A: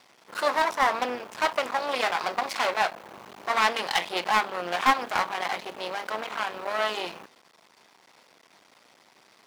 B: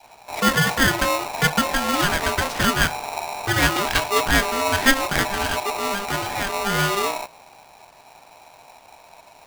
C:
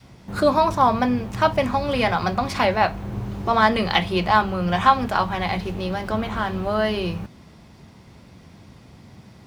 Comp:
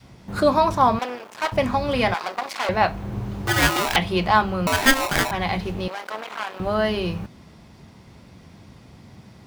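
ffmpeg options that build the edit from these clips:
-filter_complex "[0:a]asplit=3[a][b][c];[1:a]asplit=2[d][e];[2:a]asplit=6[f][g][h][i][j][k];[f]atrim=end=0.992[l];[a]atrim=start=0.988:end=1.522[m];[g]atrim=start=1.518:end=2.142[n];[b]atrim=start=2.138:end=2.692[o];[h]atrim=start=2.688:end=3.472[p];[d]atrim=start=3.468:end=3.962[q];[i]atrim=start=3.958:end=4.672[r];[e]atrim=start=4.668:end=5.312[s];[j]atrim=start=5.308:end=5.882[t];[c]atrim=start=5.878:end=6.602[u];[k]atrim=start=6.598[v];[l][m]acrossfade=d=0.004:c1=hsin:c2=hsin[w];[w][n]acrossfade=d=0.004:c1=hsin:c2=hsin[x];[x][o]acrossfade=d=0.004:c1=hsin:c2=hsin[y];[y][p]acrossfade=d=0.004:c1=hsin:c2=hsin[z];[z][q]acrossfade=d=0.004:c1=hsin:c2=hsin[aa];[aa][r]acrossfade=d=0.004:c1=hsin:c2=hsin[ab];[ab][s]acrossfade=d=0.004:c1=hsin:c2=hsin[ac];[ac][t]acrossfade=d=0.004:c1=hsin:c2=hsin[ad];[ad][u]acrossfade=d=0.004:c1=hsin:c2=hsin[ae];[ae][v]acrossfade=d=0.004:c1=hsin:c2=hsin"

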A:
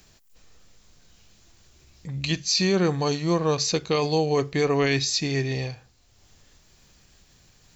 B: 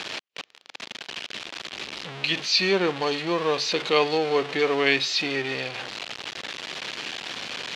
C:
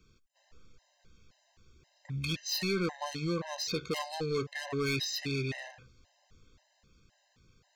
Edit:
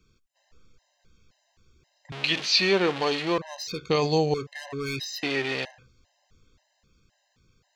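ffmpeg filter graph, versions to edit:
-filter_complex "[1:a]asplit=2[a][b];[2:a]asplit=4[c][d][e][f];[c]atrim=end=2.122[g];[a]atrim=start=2.118:end=3.382[h];[d]atrim=start=3.378:end=3.902[i];[0:a]atrim=start=3.898:end=4.342[j];[e]atrim=start=4.338:end=5.232[k];[b]atrim=start=5.228:end=5.652[l];[f]atrim=start=5.648[m];[g][h]acrossfade=d=0.004:c1=hsin:c2=hsin[n];[n][i]acrossfade=d=0.004:c1=hsin:c2=hsin[o];[o][j]acrossfade=d=0.004:c1=hsin:c2=hsin[p];[p][k]acrossfade=d=0.004:c1=hsin:c2=hsin[q];[q][l]acrossfade=d=0.004:c1=hsin:c2=hsin[r];[r][m]acrossfade=d=0.004:c1=hsin:c2=hsin"

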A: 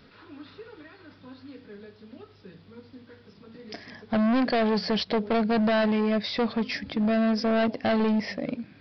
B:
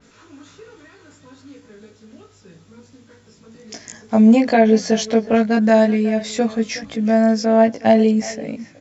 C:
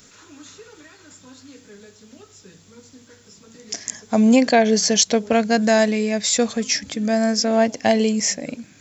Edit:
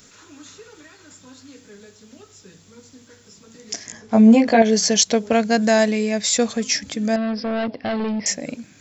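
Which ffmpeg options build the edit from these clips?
-filter_complex "[2:a]asplit=3[a][b][c];[a]atrim=end=3.872[d];[1:a]atrim=start=3.868:end=4.622[e];[b]atrim=start=4.618:end=7.162[f];[0:a]atrim=start=7.158:end=8.262[g];[c]atrim=start=8.258[h];[d][e]acrossfade=d=0.004:c1=hsin:c2=hsin[i];[i][f]acrossfade=d=0.004:c1=hsin:c2=hsin[j];[j][g]acrossfade=d=0.004:c1=hsin:c2=hsin[k];[k][h]acrossfade=d=0.004:c1=hsin:c2=hsin"

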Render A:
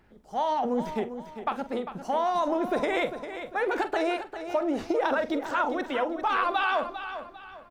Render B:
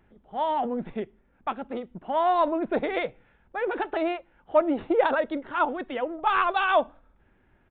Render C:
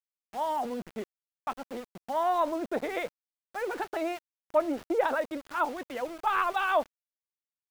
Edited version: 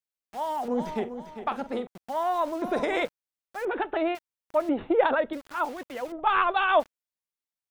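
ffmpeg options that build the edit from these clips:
-filter_complex "[0:a]asplit=2[a][b];[1:a]asplit=3[c][d][e];[2:a]asplit=6[f][g][h][i][j][k];[f]atrim=end=0.682[l];[a]atrim=start=0.678:end=1.872[m];[g]atrim=start=1.868:end=2.622[n];[b]atrim=start=2.618:end=3.052[o];[h]atrim=start=3.048:end=3.652[p];[c]atrim=start=3.648:end=4.152[q];[i]atrim=start=4.148:end=4.692[r];[d]atrim=start=4.688:end=5.332[s];[j]atrim=start=5.328:end=6.122[t];[e]atrim=start=6.118:end=6.802[u];[k]atrim=start=6.798[v];[l][m]acrossfade=d=0.004:c1=hsin:c2=hsin[w];[w][n]acrossfade=d=0.004:c1=hsin:c2=hsin[x];[x][o]acrossfade=d=0.004:c1=hsin:c2=hsin[y];[y][p]acrossfade=d=0.004:c1=hsin:c2=hsin[z];[z][q]acrossfade=d=0.004:c1=hsin:c2=hsin[aa];[aa][r]acrossfade=d=0.004:c1=hsin:c2=hsin[ab];[ab][s]acrossfade=d=0.004:c1=hsin:c2=hsin[ac];[ac][t]acrossfade=d=0.004:c1=hsin:c2=hsin[ad];[ad][u]acrossfade=d=0.004:c1=hsin:c2=hsin[ae];[ae][v]acrossfade=d=0.004:c1=hsin:c2=hsin"

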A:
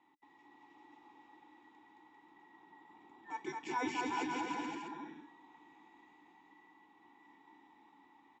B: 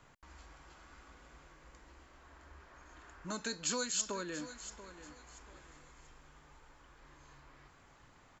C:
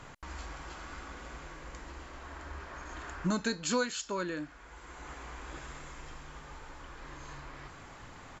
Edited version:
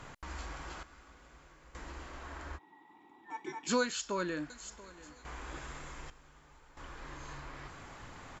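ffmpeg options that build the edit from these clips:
-filter_complex "[1:a]asplit=3[a][b][c];[2:a]asplit=5[d][e][f][g][h];[d]atrim=end=0.832[i];[a]atrim=start=0.828:end=1.752[j];[e]atrim=start=1.748:end=2.59[k];[0:a]atrim=start=2.55:end=3.7[l];[f]atrim=start=3.66:end=4.502[m];[b]atrim=start=4.498:end=5.252[n];[g]atrim=start=5.248:end=6.102[o];[c]atrim=start=6.098:end=6.772[p];[h]atrim=start=6.768[q];[i][j]acrossfade=d=0.004:c1=hsin:c2=hsin[r];[r][k]acrossfade=d=0.004:c1=hsin:c2=hsin[s];[s][l]acrossfade=d=0.04:c1=tri:c2=tri[t];[t][m]acrossfade=d=0.04:c1=tri:c2=tri[u];[u][n]acrossfade=d=0.004:c1=hsin:c2=hsin[v];[v][o]acrossfade=d=0.004:c1=hsin:c2=hsin[w];[w][p]acrossfade=d=0.004:c1=hsin:c2=hsin[x];[x][q]acrossfade=d=0.004:c1=hsin:c2=hsin"

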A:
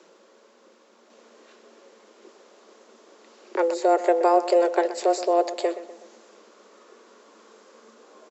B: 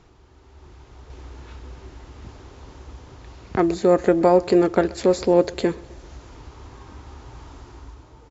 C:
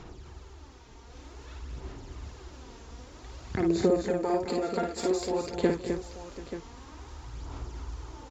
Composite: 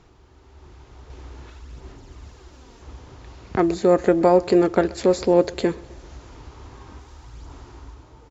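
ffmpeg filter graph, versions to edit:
-filter_complex "[2:a]asplit=2[a][b];[1:a]asplit=3[c][d][e];[c]atrim=end=1.502[f];[a]atrim=start=1.498:end=2.822[g];[d]atrim=start=2.818:end=6.992[h];[b]atrim=start=6.988:end=7.522[i];[e]atrim=start=7.518[j];[f][g]acrossfade=d=0.004:c1=hsin:c2=hsin[k];[k][h]acrossfade=d=0.004:c1=hsin:c2=hsin[l];[l][i]acrossfade=d=0.004:c1=hsin:c2=hsin[m];[m][j]acrossfade=d=0.004:c1=hsin:c2=hsin"

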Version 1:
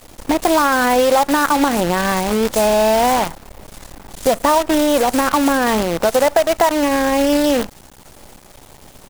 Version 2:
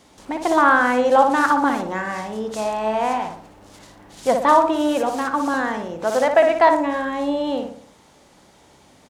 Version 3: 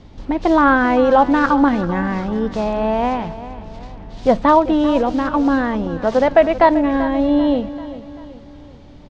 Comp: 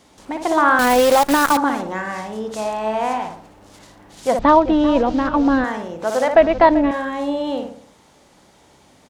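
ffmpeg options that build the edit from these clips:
-filter_complex "[2:a]asplit=2[a][b];[1:a]asplit=4[c][d][e][f];[c]atrim=end=0.792[g];[0:a]atrim=start=0.788:end=1.572[h];[d]atrim=start=1.568:end=4.392[i];[a]atrim=start=4.388:end=5.642[j];[e]atrim=start=5.638:end=6.352[k];[b]atrim=start=6.348:end=6.912[l];[f]atrim=start=6.908[m];[g][h]acrossfade=d=0.004:c1=hsin:c2=hsin[n];[n][i]acrossfade=d=0.004:c1=hsin:c2=hsin[o];[o][j]acrossfade=d=0.004:c1=hsin:c2=hsin[p];[p][k]acrossfade=d=0.004:c1=hsin:c2=hsin[q];[q][l]acrossfade=d=0.004:c1=hsin:c2=hsin[r];[r][m]acrossfade=d=0.004:c1=hsin:c2=hsin"

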